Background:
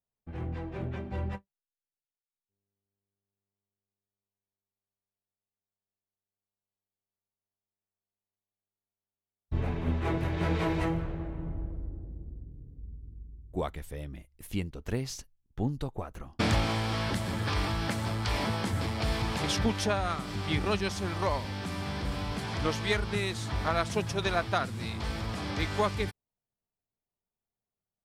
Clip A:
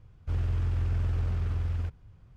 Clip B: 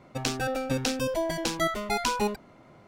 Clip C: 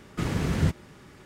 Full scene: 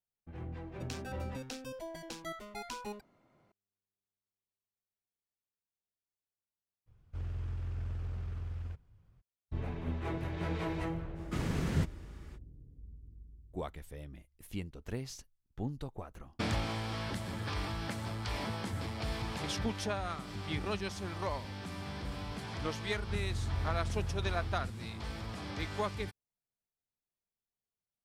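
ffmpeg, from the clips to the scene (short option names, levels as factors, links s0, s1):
-filter_complex "[1:a]asplit=2[s0][s1];[0:a]volume=0.447[s2];[2:a]atrim=end=2.87,asetpts=PTS-STARTPTS,volume=0.168,afade=t=in:d=0.004:c=hsin,afade=t=out:st=2.866:d=0.004:c=hsin,adelay=650[s3];[s0]atrim=end=2.36,asetpts=PTS-STARTPTS,volume=0.316,afade=t=in:d=0.02,afade=t=out:st=2.34:d=0.02,adelay=6860[s4];[3:a]atrim=end=1.25,asetpts=PTS-STARTPTS,volume=0.447,afade=t=in:d=0.05,afade=t=out:st=1.2:d=0.05,adelay=491274S[s5];[s1]atrim=end=2.36,asetpts=PTS-STARTPTS,volume=0.376,afade=t=in:d=0.004:c=hsin,afade=t=out:st=2.356:d=0.004:c=hsin,adelay=22810[s6];[s2][s3][s4][s5][s6]amix=inputs=5:normalize=0"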